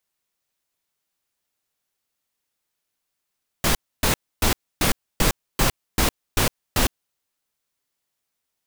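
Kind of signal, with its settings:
noise bursts pink, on 0.11 s, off 0.28 s, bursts 9, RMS −18.5 dBFS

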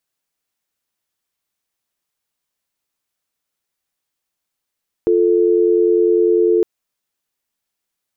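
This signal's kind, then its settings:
call progress tone dial tone, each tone −13.5 dBFS 1.56 s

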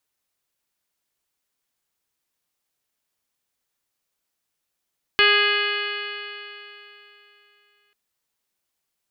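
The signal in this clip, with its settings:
stiff-string partials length 2.74 s, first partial 409 Hz, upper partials −11.5/−0.5/4/1/2.5/4/−5/−16/−4/−17 dB, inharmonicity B 0.0012, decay 3.15 s, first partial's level −22 dB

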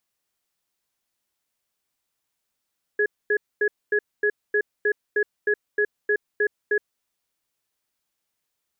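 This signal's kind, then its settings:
tone pair in a cadence 417 Hz, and 1,680 Hz, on 0.07 s, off 0.24 s, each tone −20.5 dBFS 3.95 s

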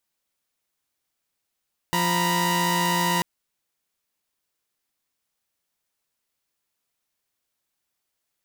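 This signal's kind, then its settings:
held notes F3/A#5/B5 saw, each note −22.5 dBFS 1.29 s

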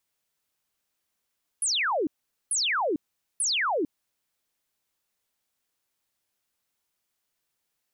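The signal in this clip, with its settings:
repeated falling chirps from 11,000 Hz, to 270 Hz, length 0.45 s sine, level −23 dB, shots 3, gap 0.44 s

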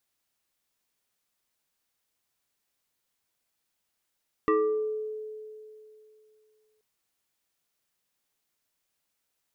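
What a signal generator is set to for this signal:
two-operator FM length 2.33 s, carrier 431 Hz, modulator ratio 1.74, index 1.4, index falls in 0.83 s exponential, decay 2.75 s, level −19 dB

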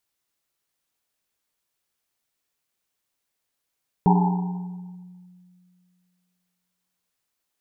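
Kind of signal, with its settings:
drum after Risset length 3.04 s, pitch 180 Hz, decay 2.36 s, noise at 860 Hz, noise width 190 Hz, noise 30%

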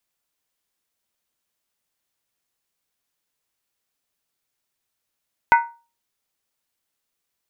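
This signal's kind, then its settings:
struck skin, lowest mode 934 Hz, decay 0.33 s, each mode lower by 5.5 dB, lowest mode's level −7.5 dB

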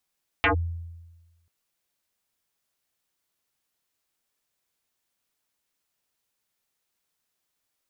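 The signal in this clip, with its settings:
two-operator FM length 1.04 s, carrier 84.3 Hz, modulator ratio 4.55, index 7.8, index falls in 0.11 s linear, decay 1.23 s, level −16 dB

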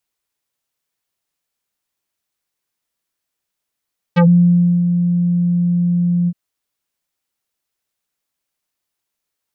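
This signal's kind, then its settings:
subtractive voice square F3 24 dB per octave, low-pass 240 Hz, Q 0.94, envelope 4.5 octaves, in 0.11 s, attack 20 ms, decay 0.65 s, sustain −7 dB, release 0.05 s, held 2.12 s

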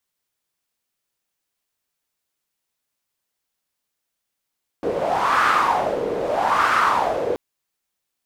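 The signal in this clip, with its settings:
wind from filtered noise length 2.53 s, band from 460 Hz, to 1,300 Hz, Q 4.6, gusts 2, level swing 7 dB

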